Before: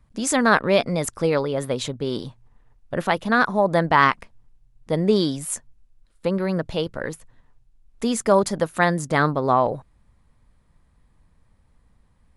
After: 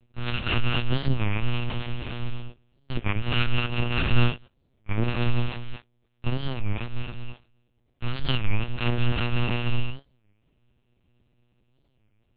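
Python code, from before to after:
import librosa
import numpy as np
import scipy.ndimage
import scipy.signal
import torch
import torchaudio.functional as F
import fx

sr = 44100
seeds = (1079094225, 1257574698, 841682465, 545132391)

y = fx.bit_reversed(x, sr, seeds[0], block=128)
y = scipy.signal.sosfilt(scipy.signal.butter(2, 50.0, 'highpass', fs=sr, output='sos'), y)
y = fx.peak_eq(y, sr, hz=1200.0, db=-14.5, octaves=1.3)
y = fx.comb(y, sr, ms=7.4, depth=0.61, at=(1.23, 3.48))
y = fx.dynamic_eq(y, sr, hz=170.0, q=2.6, threshold_db=-44.0, ratio=4.0, max_db=7)
y = np.abs(y)
y = fx.rev_gated(y, sr, seeds[1], gate_ms=260, shape='rising', drr_db=4.0)
y = fx.lpc_monotone(y, sr, seeds[2], pitch_hz=120.0, order=8)
y = fx.record_warp(y, sr, rpm=33.33, depth_cents=250.0)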